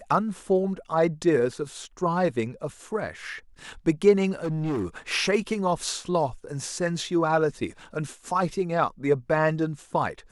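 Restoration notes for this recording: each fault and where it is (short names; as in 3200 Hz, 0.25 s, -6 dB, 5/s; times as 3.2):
4.43–4.86 clipped -24 dBFS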